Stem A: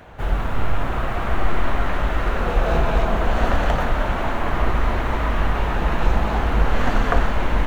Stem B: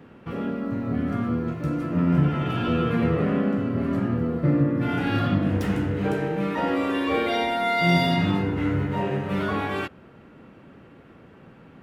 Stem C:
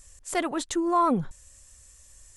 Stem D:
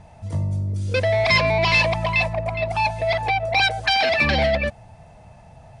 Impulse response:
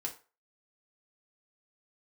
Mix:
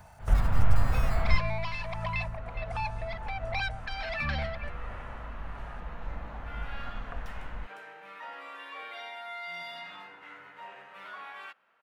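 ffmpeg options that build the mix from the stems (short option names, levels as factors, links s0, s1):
-filter_complex "[0:a]highshelf=f=3400:g=-10.5,volume=0.891[s0];[1:a]highpass=960,highshelf=f=3700:g=-8.5,adelay=1650,volume=0.355[s1];[2:a]aeval=exprs='val(0)*sgn(sin(2*PI*1500*n/s))':c=same,volume=0.158,asplit=2[s2][s3];[3:a]equalizer=f=1300:w=1.2:g=9.5,tremolo=f=1.4:d=0.73,volume=0.447[s4];[s3]apad=whole_len=338196[s5];[s0][s5]sidechaingate=range=0.126:threshold=0.00126:ratio=16:detection=peak[s6];[s6][s1][s2][s4]amix=inputs=4:normalize=0,equalizer=f=350:w=1.4:g=-9,acrossover=split=210[s7][s8];[s8]acompressor=threshold=0.0112:ratio=2[s9];[s7][s9]amix=inputs=2:normalize=0"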